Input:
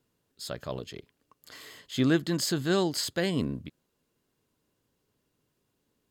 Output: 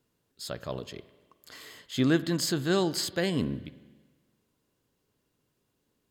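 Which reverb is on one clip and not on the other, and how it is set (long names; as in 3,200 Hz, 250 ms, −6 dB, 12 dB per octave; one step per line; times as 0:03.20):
spring reverb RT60 1.4 s, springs 43/52 ms, chirp 20 ms, DRR 16 dB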